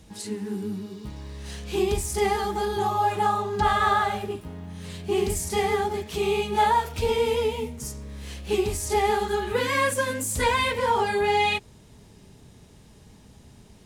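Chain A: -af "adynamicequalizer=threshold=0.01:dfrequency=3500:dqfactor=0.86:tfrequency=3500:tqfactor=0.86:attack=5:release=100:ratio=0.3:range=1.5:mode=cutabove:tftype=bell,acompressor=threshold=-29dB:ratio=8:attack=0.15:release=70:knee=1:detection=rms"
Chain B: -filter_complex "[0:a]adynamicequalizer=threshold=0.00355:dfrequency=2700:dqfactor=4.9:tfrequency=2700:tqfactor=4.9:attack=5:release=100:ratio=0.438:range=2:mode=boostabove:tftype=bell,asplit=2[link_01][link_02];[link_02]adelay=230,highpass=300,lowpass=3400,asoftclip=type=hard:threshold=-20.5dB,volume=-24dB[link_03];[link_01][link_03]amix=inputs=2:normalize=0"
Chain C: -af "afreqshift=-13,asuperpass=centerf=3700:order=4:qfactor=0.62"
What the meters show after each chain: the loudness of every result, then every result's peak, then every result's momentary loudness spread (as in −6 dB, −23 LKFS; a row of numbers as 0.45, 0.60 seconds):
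−35.0, −25.0, −32.5 LKFS; −26.5, −10.5, −15.5 dBFS; 17, 15, 17 LU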